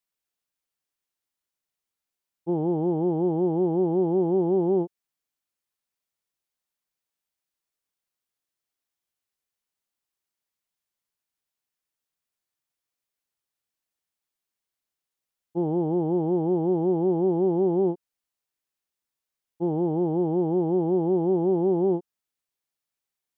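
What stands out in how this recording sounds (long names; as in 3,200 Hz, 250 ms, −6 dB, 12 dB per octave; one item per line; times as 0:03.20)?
background noise floor −88 dBFS
spectral slope −4.5 dB per octave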